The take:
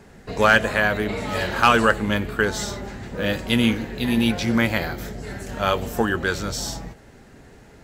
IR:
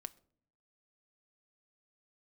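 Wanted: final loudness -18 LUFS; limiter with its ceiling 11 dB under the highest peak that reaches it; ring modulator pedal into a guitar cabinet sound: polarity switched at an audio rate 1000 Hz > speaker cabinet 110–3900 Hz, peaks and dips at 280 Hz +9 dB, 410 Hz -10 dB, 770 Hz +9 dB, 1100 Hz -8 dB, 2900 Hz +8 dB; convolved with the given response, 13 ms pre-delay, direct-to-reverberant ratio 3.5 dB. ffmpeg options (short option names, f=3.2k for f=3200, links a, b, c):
-filter_complex "[0:a]alimiter=limit=-15dB:level=0:latency=1,asplit=2[a][b];[1:a]atrim=start_sample=2205,adelay=13[c];[b][c]afir=irnorm=-1:irlink=0,volume=1dB[d];[a][d]amix=inputs=2:normalize=0,aeval=exprs='val(0)*sgn(sin(2*PI*1000*n/s))':c=same,highpass=110,equalizer=f=280:t=q:w=4:g=9,equalizer=f=410:t=q:w=4:g=-10,equalizer=f=770:t=q:w=4:g=9,equalizer=f=1.1k:t=q:w=4:g=-8,equalizer=f=2.9k:t=q:w=4:g=8,lowpass=f=3.9k:w=0.5412,lowpass=f=3.9k:w=1.3066,volume=3.5dB"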